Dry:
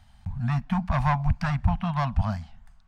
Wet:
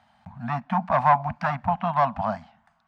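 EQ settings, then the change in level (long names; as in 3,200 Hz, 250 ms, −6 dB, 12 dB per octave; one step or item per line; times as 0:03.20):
high-pass filter 340 Hz 12 dB per octave
low-pass filter 1,000 Hz 6 dB per octave
dynamic equaliser 680 Hz, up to +4 dB, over −41 dBFS, Q 0.76
+8.0 dB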